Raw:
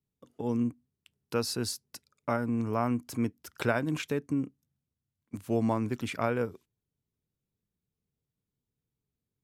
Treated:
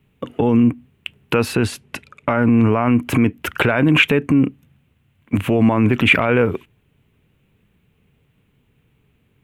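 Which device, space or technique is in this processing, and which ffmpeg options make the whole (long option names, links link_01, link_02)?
loud club master: -filter_complex "[0:a]acompressor=threshold=-34dB:ratio=2,asoftclip=type=hard:threshold=-20.5dB,alimiter=level_in=32dB:limit=-1dB:release=50:level=0:latency=1,asettb=1/sr,asplit=3[link_01][link_02][link_03];[link_01]atrim=end=1.554[link_04];[link_02]atrim=start=1.55:end=2.94,asetpts=PTS-STARTPTS,afade=type=in:duration=0.004:curve=qsin,afade=type=out:start_time=1.386:duration=0.004:curve=qsin,lowpass=10000[link_05];[link_03]atrim=start=2.936[link_06];[link_04][link_05]acrossfade=duration=0.004:curve1=hsin:curve2=qsin[link_07];[link_07][link_06]acrossfade=duration=0.004:curve1=qsin:curve2=hsin,highshelf=frequency=3700:width_type=q:width=3:gain=-11,volume=-5.5dB"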